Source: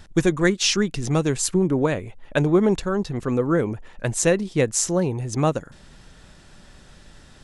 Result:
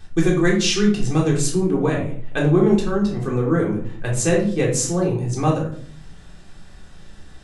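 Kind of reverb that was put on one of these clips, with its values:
rectangular room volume 580 cubic metres, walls furnished, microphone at 3.7 metres
level −4.5 dB

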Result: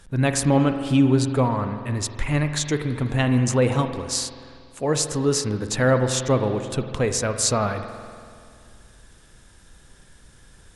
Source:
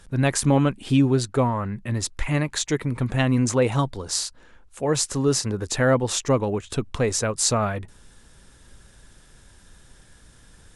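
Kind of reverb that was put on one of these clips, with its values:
spring reverb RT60 2.2 s, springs 47 ms, chirp 35 ms, DRR 7.5 dB

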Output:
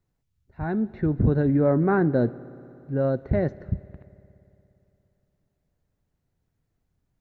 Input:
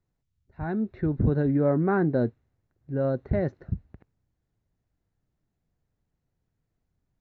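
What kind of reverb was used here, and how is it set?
spring reverb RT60 3 s, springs 58 ms, chirp 30 ms, DRR 18.5 dB
level +2.5 dB

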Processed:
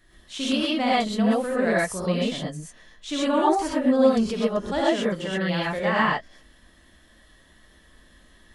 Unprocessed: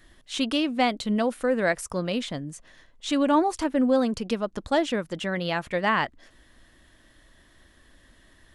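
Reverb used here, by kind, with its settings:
reverb whose tail is shaped and stops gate 150 ms rising, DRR −6.5 dB
level −5.5 dB

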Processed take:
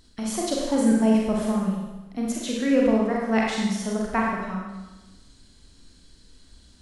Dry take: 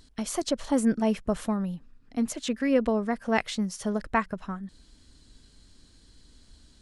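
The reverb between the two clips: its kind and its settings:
four-comb reverb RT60 1.1 s, combs from 32 ms, DRR −3 dB
level −1.5 dB

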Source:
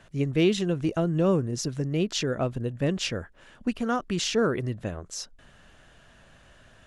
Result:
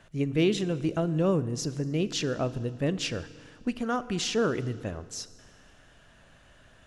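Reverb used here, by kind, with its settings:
feedback delay network reverb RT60 1.8 s, low-frequency decay 1.25×, high-frequency decay 0.95×, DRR 14.5 dB
level −2 dB

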